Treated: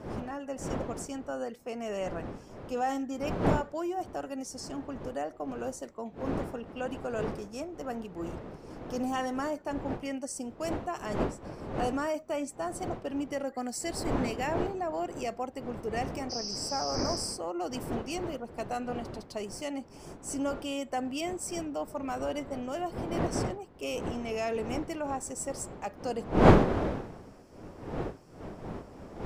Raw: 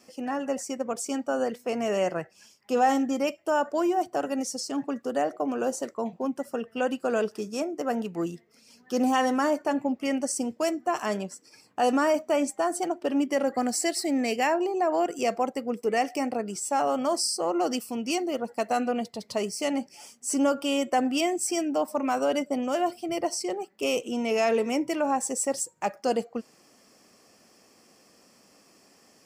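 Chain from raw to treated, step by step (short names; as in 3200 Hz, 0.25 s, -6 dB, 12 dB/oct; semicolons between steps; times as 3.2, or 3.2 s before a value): wind noise 490 Hz -27 dBFS; spectral repair 16.33–17.16, 2500–6500 Hz after; gain -8.5 dB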